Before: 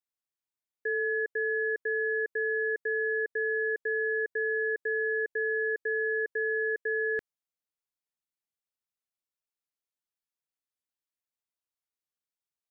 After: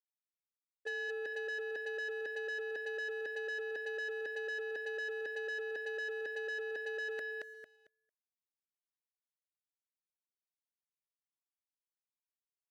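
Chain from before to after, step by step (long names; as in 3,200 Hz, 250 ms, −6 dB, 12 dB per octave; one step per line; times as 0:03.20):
noise gate −30 dBFS, range −31 dB
low-pass that shuts in the quiet parts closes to 950 Hz
compressor whose output falls as the input rises −41 dBFS, ratio −1
low-shelf EQ 430 Hz −10 dB
repeating echo 225 ms, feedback 26%, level −4 dB
leveller curve on the samples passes 2
high-pass filter 120 Hz 6 dB per octave
parametric band 630 Hz +11.5 dB 0.35 octaves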